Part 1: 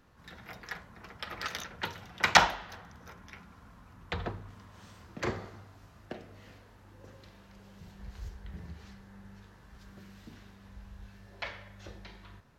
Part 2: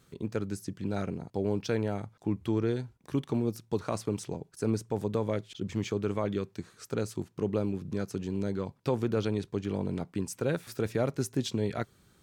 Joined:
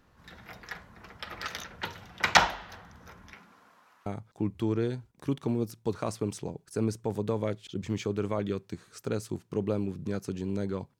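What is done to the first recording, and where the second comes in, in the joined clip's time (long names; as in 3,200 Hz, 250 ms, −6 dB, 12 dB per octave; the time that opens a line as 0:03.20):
part 1
0:03.33–0:04.06: high-pass filter 170 Hz → 920 Hz
0:04.06: continue with part 2 from 0:01.92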